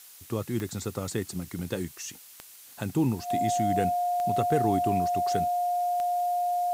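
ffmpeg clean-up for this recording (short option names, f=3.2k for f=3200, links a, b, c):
-af "adeclick=t=4,bandreject=f=710:w=30,afftdn=nr=24:nf=-50"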